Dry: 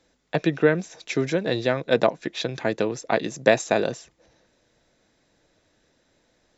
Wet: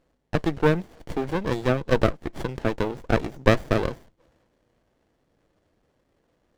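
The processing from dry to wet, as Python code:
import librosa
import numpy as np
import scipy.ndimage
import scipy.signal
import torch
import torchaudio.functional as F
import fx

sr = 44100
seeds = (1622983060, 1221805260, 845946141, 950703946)

p1 = fx.peak_eq(x, sr, hz=210.0, db=-4.0, octaves=2.1)
p2 = fx.quant_float(p1, sr, bits=2)
p3 = p1 + F.gain(torch.from_numpy(p2), -11.0).numpy()
p4 = fx.high_shelf(p3, sr, hz=5700.0, db=-5.0)
p5 = fx.running_max(p4, sr, window=33)
y = F.gain(torch.from_numpy(p5), -1.0).numpy()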